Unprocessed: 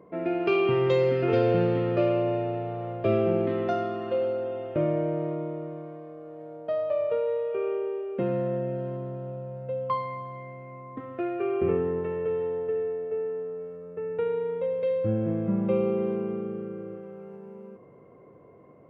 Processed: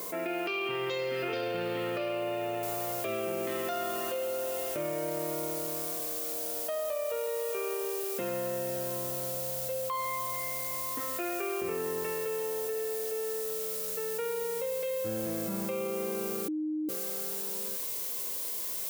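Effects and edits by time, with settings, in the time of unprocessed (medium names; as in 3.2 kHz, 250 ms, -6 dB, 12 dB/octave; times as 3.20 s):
2.63 s: noise floor step -69 dB -57 dB
16.48–16.89 s: bleep 308 Hz -20.5 dBFS
whole clip: tilt EQ +4.5 dB/octave; peak limiter -24 dBFS; level flattener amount 70%; trim -2.5 dB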